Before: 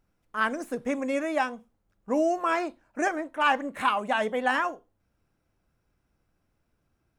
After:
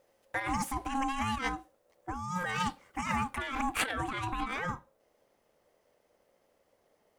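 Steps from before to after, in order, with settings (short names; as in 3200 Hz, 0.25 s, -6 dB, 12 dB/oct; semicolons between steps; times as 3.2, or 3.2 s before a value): ring modulator 540 Hz; negative-ratio compressor -35 dBFS, ratio -1; high shelf 2100 Hz +7 dB, from 2.19 s +11.5 dB, from 3.91 s +4.5 dB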